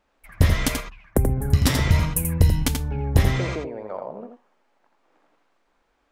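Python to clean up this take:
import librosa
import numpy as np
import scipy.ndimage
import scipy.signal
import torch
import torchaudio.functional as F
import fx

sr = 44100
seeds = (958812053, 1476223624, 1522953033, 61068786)

y = fx.fix_echo_inverse(x, sr, delay_ms=84, level_db=-6.0)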